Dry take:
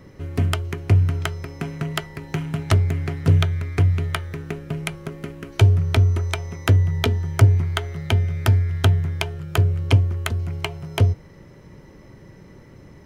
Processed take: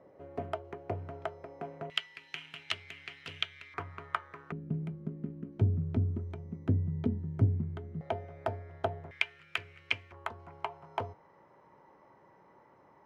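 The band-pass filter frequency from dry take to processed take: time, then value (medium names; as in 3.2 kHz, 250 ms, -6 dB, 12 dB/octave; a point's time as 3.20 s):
band-pass filter, Q 2.9
650 Hz
from 1.90 s 2.9 kHz
from 3.74 s 1.1 kHz
from 4.52 s 210 Hz
from 8.01 s 670 Hz
from 9.11 s 2.3 kHz
from 10.12 s 910 Hz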